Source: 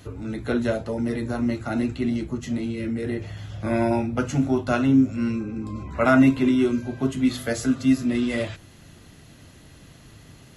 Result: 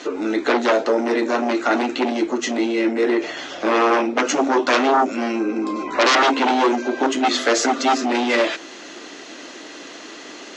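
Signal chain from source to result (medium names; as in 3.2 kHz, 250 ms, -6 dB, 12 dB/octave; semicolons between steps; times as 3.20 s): sine folder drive 15 dB, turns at -5.5 dBFS; compression, threshold -10 dBFS, peak gain reduction 3.5 dB; elliptic band-pass 310–6500 Hz, stop band 40 dB; trim -2 dB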